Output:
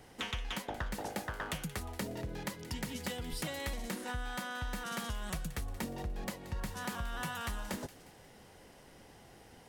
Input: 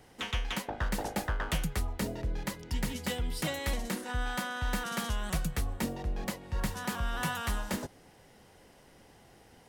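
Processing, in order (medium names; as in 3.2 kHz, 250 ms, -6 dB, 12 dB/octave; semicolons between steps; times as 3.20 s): 0.94–3.33 s: high-pass 81 Hz 12 dB/octave; compression, threshold -36 dBFS, peak gain reduction 9.5 dB; feedback echo behind a high-pass 178 ms, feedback 48%, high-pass 2.1 kHz, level -14 dB; trim +1 dB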